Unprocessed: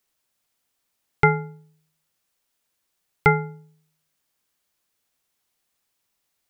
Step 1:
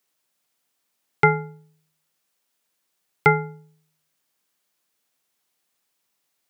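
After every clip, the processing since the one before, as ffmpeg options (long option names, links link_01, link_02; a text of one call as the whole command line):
ffmpeg -i in.wav -af "highpass=140,volume=1dB" out.wav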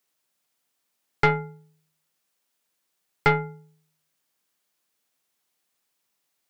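ffmpeg -i in.wav -af "aeval=exprs='(tanh(3.16*val(0)+0.45)-tanh(0.45))/3.16':channel_layout=same" out.wav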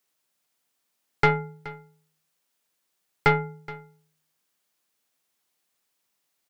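ffmpeg -i in.wav -af "aecho=1:1:423:0.112" out.wav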